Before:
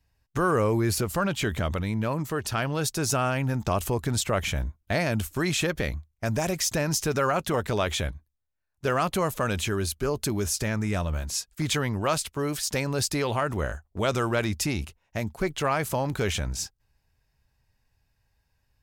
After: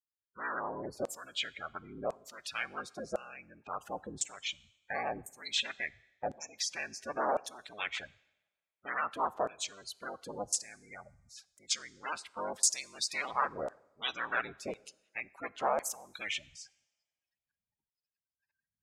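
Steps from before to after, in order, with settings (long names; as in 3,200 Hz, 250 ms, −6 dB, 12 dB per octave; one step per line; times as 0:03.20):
sub-harmonics by changed cycles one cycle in 3, inverted
high-shelf EQ 3,100 Hz +3 dB, from 0:12.56 +9 dB
gate on every frequency bin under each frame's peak −15 dB strong
auto-filter band-pass saw down 0.95 Hz 570–7,700 Hz
coupled-rooms reverb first 0.92 s, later 2.7 s, from −28 dB, DRR 20 dB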